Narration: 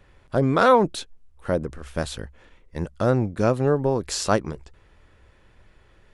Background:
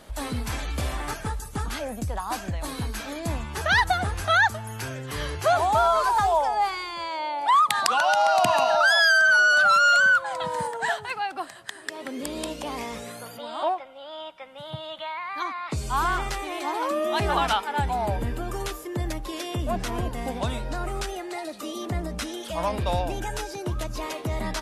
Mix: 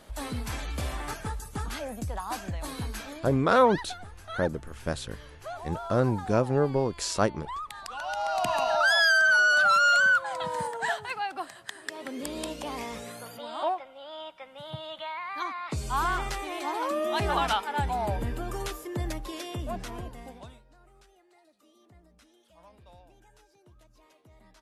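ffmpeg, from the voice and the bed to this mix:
ffmpeg -i stem1.wav -i stem2.wav -filter_complex "[0:a]adelay=2900,volume=-4dB[link_01];[1:a]volume=11dB,afade=type=out:start_time=2.95:duration=0.48:silence=0.199526,afade=type=in:start_time=7.88:duration=1.06:silence=0.177828,afade=type=out:start_time=19.1:duration=1.54:silence=0.0530884[link_02];[link_01][link_02]amix=inputs=2:normalize=0" out.wav

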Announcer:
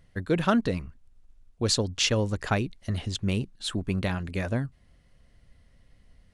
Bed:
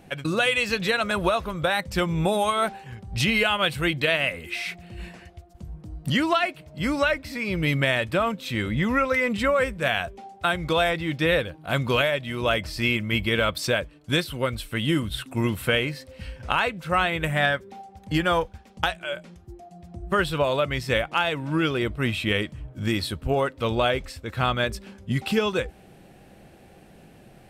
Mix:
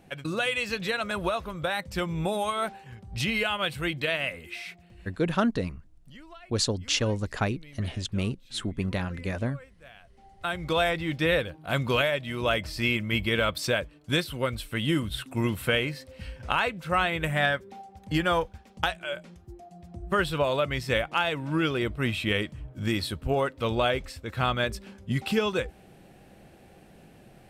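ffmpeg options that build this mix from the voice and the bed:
ffmpeg -i stem1.wav -i stem2.wav -filter_complex "[0:a]adelay=4900,volume=-1.5dB[link_01];[1:a]volume=18.5dB,afade=type=out:start_time=4.34:duration=0.94:silence=0.0891251,afade=type=in:start_time=10.08:duration=0.72:silence=0.0630957[link_02];[link_01][link_02]amix=inputs=2:normalize=0" out.wav

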